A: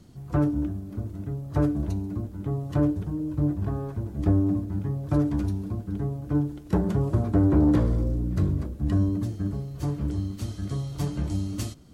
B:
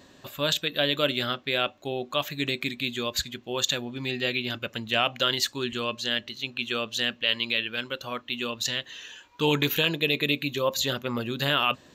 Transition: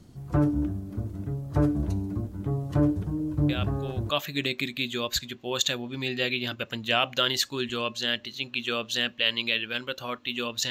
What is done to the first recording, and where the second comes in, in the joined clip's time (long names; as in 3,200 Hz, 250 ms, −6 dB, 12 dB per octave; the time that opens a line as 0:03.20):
A
0:03.49: mix in B from 0:01.52 0.61 s −8 dB
0:04.10: continue with B from 0:02.13